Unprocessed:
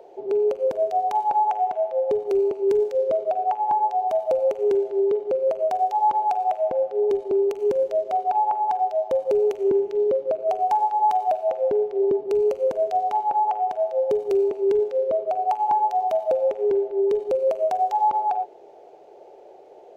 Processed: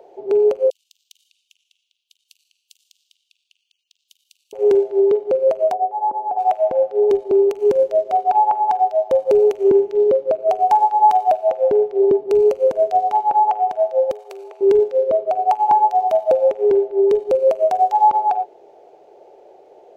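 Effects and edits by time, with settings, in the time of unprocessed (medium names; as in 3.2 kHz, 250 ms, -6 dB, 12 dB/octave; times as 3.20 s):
0.70–4.53 s: steep high-pass 2.8 kHz 72 dB/octave
5.73–6.37 s: Butterworth band-pass 380 Hz, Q 0.69
14.11–14.61 s: high-pass 640 Hz 24 dB/octave
whole clip: upward expansion 1.5:1, over -31 dBFS; trim +8 dB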